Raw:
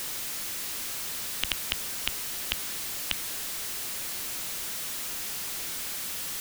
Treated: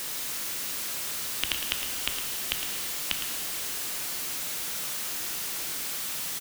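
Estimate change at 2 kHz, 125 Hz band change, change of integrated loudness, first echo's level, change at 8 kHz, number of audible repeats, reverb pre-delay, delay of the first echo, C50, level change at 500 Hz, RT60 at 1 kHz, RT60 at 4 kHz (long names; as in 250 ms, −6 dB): +1.5 dB, −0.5 dB, +1.5 dB, −10.0 dB, +1.5 dB, 1, 12 ms, 110 ms, 4.0 dB, +1.5 dB, 2.6 s, 2.1 s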